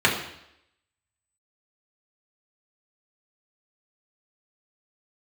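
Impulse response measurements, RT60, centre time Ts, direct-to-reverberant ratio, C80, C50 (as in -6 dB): 0.75 s, 30 ms, -4.0 dB, 9.5 dB, 6.5 dB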